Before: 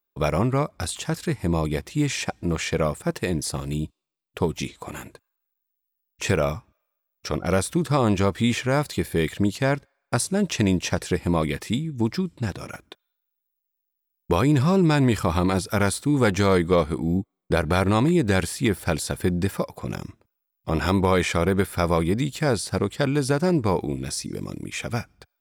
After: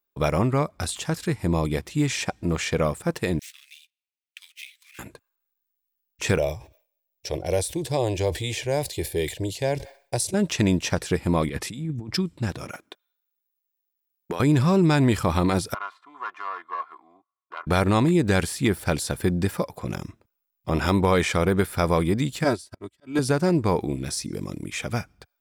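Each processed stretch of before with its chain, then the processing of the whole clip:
3.39–4.99 s: median filter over 9 samples + steep high-pass 2.1 kHz + band-stop 7.2 kHz, Q 13
6.38–10.34 s: static phaser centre 530 Hz, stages 4 + decay stretcher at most 140 dB/s
11.49–12.17 s: compressor with a negative ratio -30 dBFS + brick-wall FIR low-pass 13 kHz + three bands expanded up and down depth 100%
12.71–14.40 s: high-pass 230 Hz + compression 10:1, threshold -24 dBFS
15.74–17.67 s: self-modulated delay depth 0.14 ms + ladder band-pass 1.2 kHz, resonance 70% + comb 2.9 ms, depth 51%
22.44–23.19 s: comb 3.1 ms, depth 88% + slow attack 161 ms + upward expansion 2.5:1, over -41 dBFS
whole clip: none

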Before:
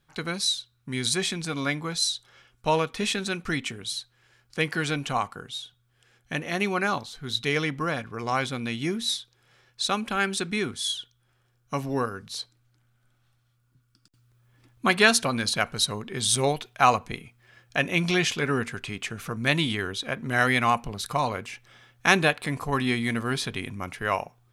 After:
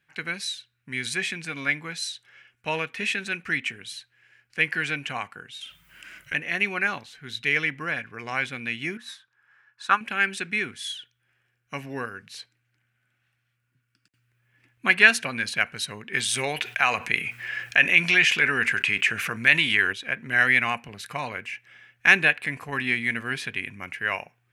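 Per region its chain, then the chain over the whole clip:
5.61–6.34 s: treble shelf 9.8 kHz +11 dB + frequency shift -170 Hz + level flattener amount 50%
8.97–10.01 s: high-order bell 1.2 kHz +14.5 dB 1.2 oct + upward expansion, over -32 dBFS
16.13–19.93 s: bass shelf 490 Hz -7 dB + level flattener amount 50%
whole clip: high-pass 89 Hz; high-order bell 2.1 kHz +12.5 dB 1.1 oct; trim -6.5 dB

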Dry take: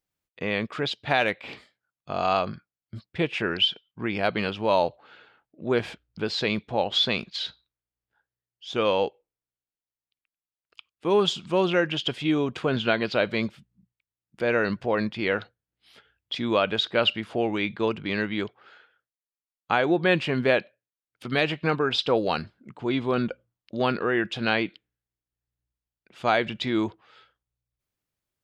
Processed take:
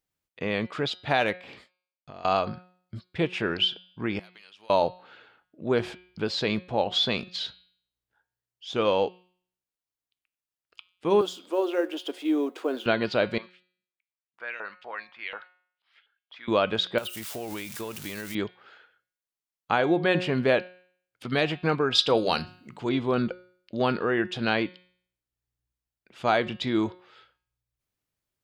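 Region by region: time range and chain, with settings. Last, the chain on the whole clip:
1.37–2.25 s: expander -54 dBFS + compression 4:1, threshold -42 dBFS
4.19–4.70 s: differentiator + compression, threshold -47 dBFS
11.21–12.86 s: companding laws mixed up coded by mu + elliptic high-pass 280 Hz + peaking EQ 2.6 kHz -9.5 dB 3 oct
13.38–16.48 s: bass shelf 490 Hz -7 dB + LFO band-pass saw up 4.1 Hz 870–3500 Hz
16.98–18.35 s: zero-crossing glitches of -24 dBFS + peaking EQ 230 Hz -3.5 dB 2.3 oct + compression 12:1, threshold -30 dBFS
21.95–22.89 s: treble shelf 3.2 kHz +11 dB + hum notches 50/100/150/200/250/300 Hz
whole clip: de-hum 181.3 Hz, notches 27; dynamic bell 2.3 kHz, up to -3 dB, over -38 dBFS, Q 1.1

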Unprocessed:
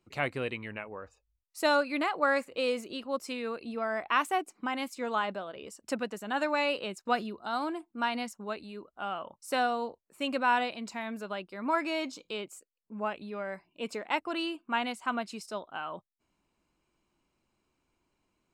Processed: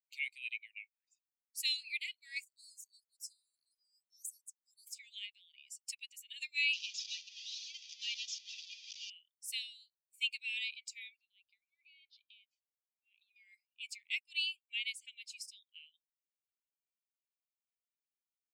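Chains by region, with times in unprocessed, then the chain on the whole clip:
2.44–4.87 s: inverse Chebyshev band-stop 670–3100 Hz + high-order bell 1.5 kHz -15.5 dB 2.3 oct
6.73–9.10 s: one-bit delta coder 32 kbps, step -31 dBFS + band-stop 2.2 kHz, Q 7.7
11.16–13.36 s: steep low-pass 4.1 kHz + peaking EQ 1.5 kHz -6 dB 0.98 oct + compression 12:1, threshold -45 dBFS
whole clip: expander on every frequency bin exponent 1.5; steep high-pass 2.2 kHz 96 dB/octave; trim +4 dB

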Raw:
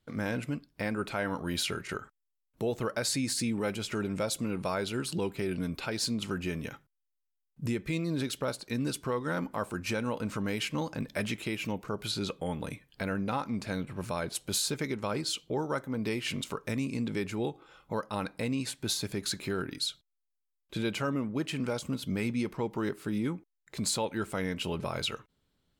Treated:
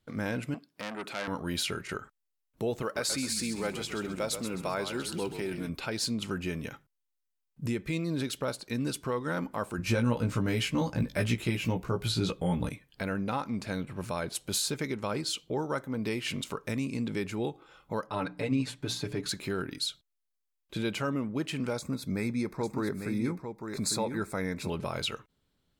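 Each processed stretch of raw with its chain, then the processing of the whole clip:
0.54–1.28 s: high-pass 210 Hz + transformer saturation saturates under 2.7 kHz
2.82–5.69 s: high-pass 250 Hz 6 dB/octave + companded quantiser 8-bit + frequency-shifting echo 131 ms, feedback 36%, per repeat -42 Hz, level -9 dB
9.78–12.69 s: bass shelf 150 Hz +11.5 dB + doubling 17 ms -4 dB
18.07–19.29 s: low-pass 2.8 kHz 6 dB/octave + hum notches 60/120/180/240/300/360/420 Hz + comb 6.9 ms, depth 84%
21.76–24.70 s: Butterworth band-stop 3 kHz, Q 2.8 + delay 850 ms -7 dB
whole clip: none

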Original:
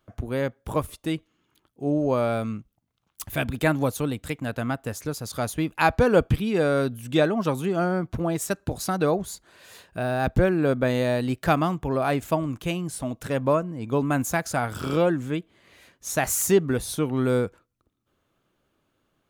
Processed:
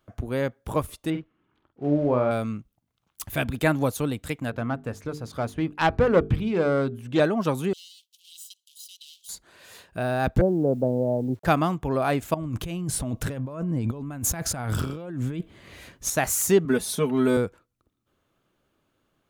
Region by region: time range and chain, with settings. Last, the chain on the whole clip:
1.10–2.31 s: block-companded coder 5-bit + low-pass 1.9 kHz + doubling 48 ms -7.5 dB
4.50–7.20 s: self-modulated delay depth 0.16 ms + low-pass 2.2 kHz 6 dB/octave + hum notches 50/100/150/200/250/300/350/400/450 Hz
7.73–9.29 s: comb filter that takes the minimum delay 0.99 ms + steep high-pass 3 kHz 72 dB/octave + compression 3:1, threshold -42 dBFS
10.41–11.45 s: Chebyshev band-pass 100–840 Hz, order 4 + word length cut 10-bit, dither none
12.34–16.10 s: bass shelf 190 Hz +10.5 dB + compressor with a negative ratio -30 dBFS
16.65–17.37 s: high-pass 110 Hz + comb 4.7 ms, depth 85%
whole clip: none

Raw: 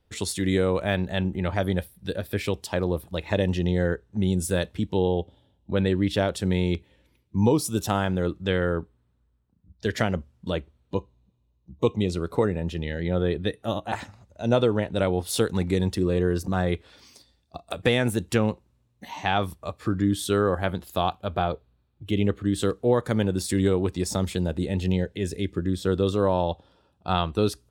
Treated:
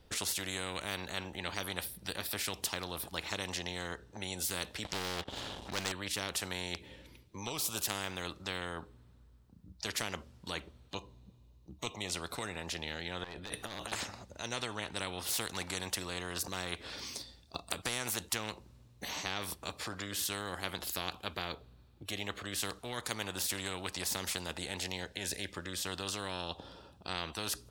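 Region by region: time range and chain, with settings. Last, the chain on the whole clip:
4.85–5.92 s: low-pass 9 kHz + upward compressor, threshold -30 dBFS + waveshaping leveller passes 2
13.24–13.92 s: overload inside the chain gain 21 dB + compressor with a negative ratio -40 dBFS
whole clip: peaking EQ 4.8 kHz +4 dB 0.89 oct; spectrum-flattening compressor 4:1; trim -7.5 dB

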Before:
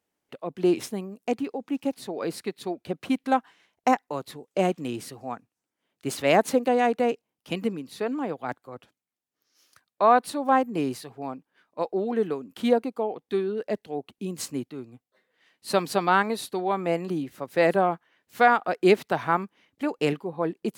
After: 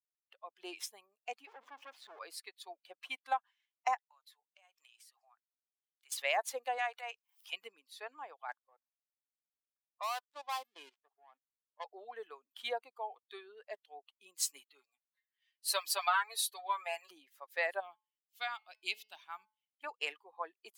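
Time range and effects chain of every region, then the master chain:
1.47–2.19 s: jump at every zero crossing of -31.5 dBFS + RIAA curve playback + valve stage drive 27 dB, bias 0.75
3.97–6.12 s: high-pass 870 Hz + compression 8:1, threshold -45 dBFS
6.78–7.53 s: upward compressor, threshold -28 dBFS + high-pass 690 Hz + transient shaper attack -8 dB, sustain +3 dB
8.59–11.84 s: dead-time distortion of 0.19 ms + level-controlled noise filter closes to 710 Hz, open at -20.5 dBFS + level held to a coarse grid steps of 14 dB
14.42–17.11 s: tremolo triangle 2.6 Hz, depth 30% + tilt EQ +2 dB/octave + comb 7.1 ms, depth 88%
17.80–19.84 s: high-order bell 860 Hz -13.5 dB 2.7 oct + de-hum 215.8 Hz, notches 27 + tape noise reduction on one side only decoder only
whole clip: expander on every frequency bin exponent 1.5; high-pass 780 Hz 24 dB/octave; compression 2.5:1, threshold -31 dBFS

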